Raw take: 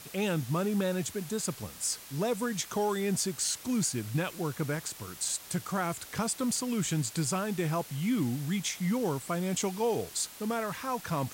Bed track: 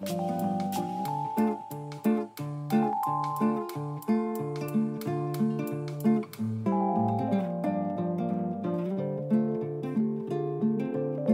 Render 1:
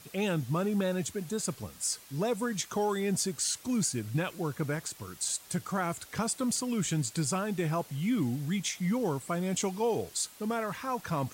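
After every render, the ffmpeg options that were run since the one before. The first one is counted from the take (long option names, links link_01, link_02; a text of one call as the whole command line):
ffmpeg -i in.wav -af "afftdn=noise_reduction=6:noise_floor=-48" out.wav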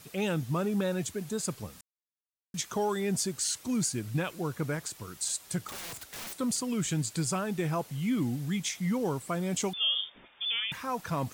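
ffmpeg -i in.wav -filter_complex "[0:a]asettb=1/sr,asplit=3[link_01][link_02][link_03];[link_01]atrim=end=5.674[link_04];[link_02]atrim=start=5.67:end=6.33,asetpts=PTS-STARTPTS,afade=type=in:duration=0.004:curve=qsin,afade=type=out:start_time=0.656:duration=0.004:curve=qsin,aeval=exprs='(mod(59.6*val(0)+1,2)-1)/59.6':channel_layout=same[link_05];[link_03]atrim=start=6.326[link_06];[link_04][link_05]acrossfade=duration=0.004:curve1=hsin:curve2=qsin[link_07];[link_07][link_06]acrossfade=duration=0.004:curve1=qsin:curve2=hsin,asettb=1/sr,asplit=3[link_08][link_09][link_10];[link_08]atrim=end=9.734[link_11];[link_09]atrim=start=9.73:end=10.72,asetpts=PTS-STARTPTS,afade=type=in:duration=0.004:curve=qsin,afade=type=out:start_time=0.986:duration=0.004:curve=qsin,lowpass=frequency=3100:width_type=q:width=0.5098,lowpass=frequency=3100:width_type=q:width=0.6013,lowpass=frequency=3100:width_type=q:width=0.9,lowpass=frequency=3100:width_type=q:width=2.563,afreqshift=-3700[link_12];[link_10]atrim=start=10.716[link_13];[link_11][link_12]acrossfade=duration=0.004:curve1=hsin:curve2=qsin[link_14];[link_14][link_13]acrossfade=duration=0.004:curve1=qsin:curve2=hsin,asplit=3[link_15][link_16][link_17];[link_15]atrim=end=1.81,asetpts=PTS-STARTPTS,afade=type=out:start_time=1.806:duration=0.004:curve=hsin[link_18];[link_16]atrim=start=1.81:end=2.54,asetpts=PTS-STARTPTS,volume=0[link_19];[link_17]atrim=start=2.54,asetpts=PTS-STARTPTS,afade=type=in:duration=0.004:curve=hsin[link_20];[link_18][link_19][link_20]concat=n=3:v=0:a=1" out.wav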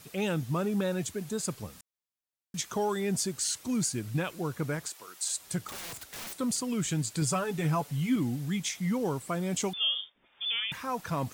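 ffmpeg -i in.wav -filter_complex "[0:a]asettb=1/sr,asplit=3[link_01][link_02][link_03];[link_01]atrim=end=4.894[link_04];[link_02]atrim=start=4.89:end=5.37,asetpts=PTS-STARTPTS,afade=type=in:duration=0.004:curve=qsin,afade=type=out:start_time=0.476:duration=0.004:curve=qsin,highpass=510[link_05];[link_03]atrim=start=5.366[link_06];[link_04][link_05]acrossfade=duration=0.004:curve1=hsin:curve2=qsin[link_07];[link_07][link_06]acrossfade=duration=0.004:curve1=qsin:curve2=hsin,asettb=1/sr,asplit=3[link_08][link_09][link_10];[link_08]atrim=end=7.214[link_11];[link_09]atrim=start=7.21:end=8.16,asetpts=PTS-STARTPTS,afade=type=in:duration=0.004:curve=qsin,afade=type=out:start_time=0.946:duration=0.004:curve=qsin,aecho=1:1:7:0.66,atrim=end_sample=41895[link_12];[link_10]atrim=start=8.156[link_13];[link_11][link_12]acrossfade=duration=0.004:curve1=hsin:curve2=qsin[link_14];[link_14][link_13]acrossfade=duration=0.004:curve1=qsin:curve2=hsin,asplit=3[link_15][link_16][link_17];[link_15]atrim=end=10.14,asetpts=PTS-STARTPTS,afade=type=out:start_time=9.87:duration=0.27:silence=0.141254[link_18];[link_16]atrim=start=10.14:end=10.2,asetpts=PTS-STARTPTS,volume=-17dB[link_19];[link_17]atrim=start=10.2,asetpts=PTS-STARTPTS,afade=type=in:duration=0.27:silence=0.141254[link_20];[link_18][link_19][link_20]concat=n=3:v=0:a=1" out.wav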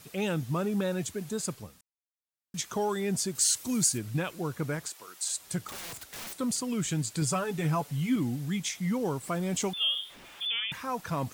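ffmpeg -i in.wav -filter_complex "[0:a]asettb=1/sr,asplit=3[link_01][link_02][link_03];[link_01]atrim=end=3.354[link_04];[link_02]atrim=start=3.35:end=3.98,asetpts=PTS-STARTPTS,afade=type=in:duration=0.004:curve=qsin,afade=type=out:start_time=0.626:duration=0.004:curve=qsin,highshelf=frequency=5100:gain=9[link_05];[link_03]atrim=start=3.976[link_06];[link_04][link_05]acrossfade=duration=0.004:curve1=hsin:curve2=qsin[link_07];[link_07][link_06]acrossfade=duration=0.004:curve1=qsin:curve2=hsin,asettb=1/sr,asplit=3[link_08][link_09][link_10];[link_08]atrim=end=9.234[link_11];[link_09]atrim=start=9.23:end=10.47,asetpts=PTS-STARTPTS,afade=type=in:duration=0.004:curve=qsin,afade=type=out:start_time=1.236:duration=0.004:curve=qsin,aeval=exprs='val(0)+0.5*0.00531*sgn(val(0))':channel_layout=same[link_12];[link_10]atrim=start=10.466[link_13];[link_11][link_12]acrossfade=duration=0.004:curve1=hsin:curve2=qsin[link_14];[link_14][link_13]acrossfade=duration=0.004:curve1=qsin:curve2=hsin,asplit=3[link_15][link_16][link_17];[link_15]atrim=end=1.94,asetpts=PTS-STARTPTS,afade=type=out:start_time=1.45:duration=0.49:silence=0.0944061[link_18];[link_16]atrim=start=1.94:end=2.1,asetpts=PTS-STARTPTS,volume=-20.5dB[link_19];[link_17]atrim=start=2.1,asetpts=PTS-STARTPTS,afade=type=in:duration=0.49:silence=0.0944061[link_20];[link_18][link_19][link_20]concat=n=3:v=0:a=1" out.wav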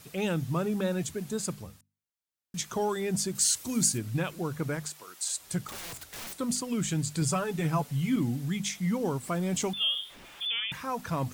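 ffmpeg -i in.wav -af "lowshelf=frequency=130:gain=5.5,bandreject=frequency=50:width_type=h:width=6,bandreject=frequency=100:width_type=h:width=6,bandreject=frequency=150:width_type=h:width=6,bandreject=frequency=200:width_type=h:width=6,bandreject=frequency=250:width_type=h:width=6" out.wav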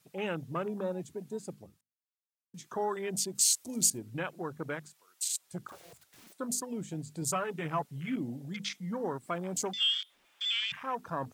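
ffmpeg -i in.wav -af "afwtdn=0.0126,highpass=frequency=490:poles=1" out.wav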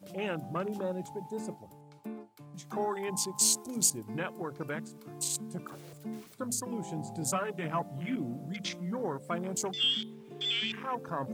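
ffmpeg -i in.wav -i bed.wav -filter_complex "[1:a]volume=-16dB[link_01];[0:a][link_01]amix=inputs=2:normalize=0" out.wav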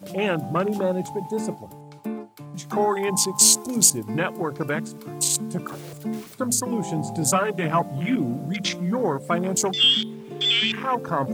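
ffmpeg -i in.wav -af "volume=11dB,alimiter=limit=-3dB:level=0:latency=1" out.wav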